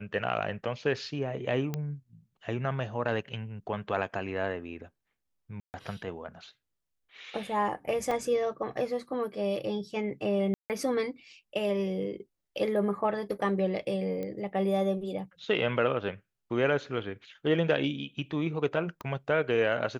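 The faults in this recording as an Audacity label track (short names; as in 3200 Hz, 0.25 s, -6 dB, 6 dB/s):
1.740000	1.740000	pop -19 dBFS
5.600000	5.740000	gap 0.139 s
8.110000	8.110000	gap 3.3 ms
10.540000	10.700000	gap 0.158 s
14.230000	14.230000	pop -24 dBFS
19.010000	19.010000	pop -25 dBFS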